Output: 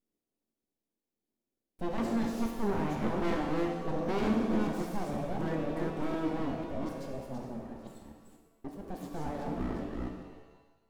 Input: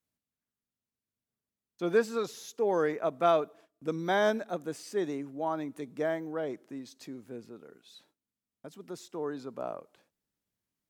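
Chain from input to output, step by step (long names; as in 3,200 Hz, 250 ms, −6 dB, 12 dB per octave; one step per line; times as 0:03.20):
delay that plays each chunk backwards 246 ms, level −4 dB
full-wave rectification
drawn EQ curve 140 Hz 0 dB, 230 Hz +13 dB, 1,300 Hz −8 dB
soft clipping −28 dBFS, distortion −8 dB
reverb with rising layers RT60 1.1 s, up +7 semitones, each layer −8 dB, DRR 2 dB
level +2.5 dB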